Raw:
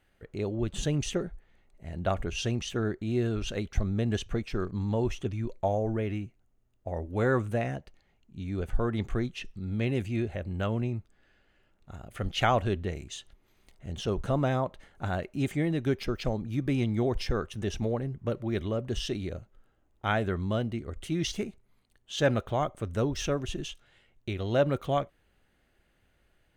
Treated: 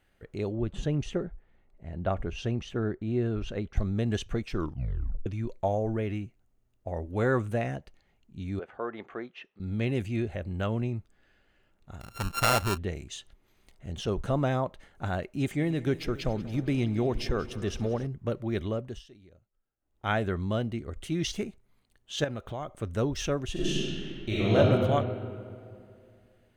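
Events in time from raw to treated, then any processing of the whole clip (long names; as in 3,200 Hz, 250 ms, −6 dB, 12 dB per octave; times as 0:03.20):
0:00.52–0:03.77: low-pass filter 1,600 Hz 6 dB per octave
0:04.54: tape stop 0.72 s
0:08.59–0:09.60: band-pass filter 450–2,100 Hz
0:12.00–0:12.78: samples sorted by size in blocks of 32 samples
0:15.34–0:18.07: echo machine with several playback heads 93 ms, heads second and third, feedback 66%, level −18.5 dB
0:18.72–0:20.12: duck −21 dB, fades 0.32 s
0:22.24–0:22.82: downward compressor 2.5 to 1, threshold −35 dBFS
0:23.52–0:24.56: thrown reverb, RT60 2.4 s, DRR −9.5 dB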